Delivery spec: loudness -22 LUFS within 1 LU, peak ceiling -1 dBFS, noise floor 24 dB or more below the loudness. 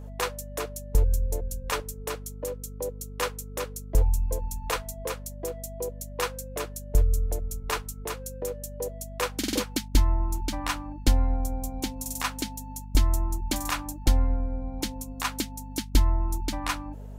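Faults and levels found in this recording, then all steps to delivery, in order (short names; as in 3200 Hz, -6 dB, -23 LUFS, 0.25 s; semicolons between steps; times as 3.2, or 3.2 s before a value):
hum 50 Hz; harmonics up to 250 Hz; hum level -36 dBFS; loudness -30.0 LUFS; peak -6.0 dBFS; loudness target -22.0 LUFS
-> de-hum 50 Hz, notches 5; gain +8 dB; limiter -1 dBFS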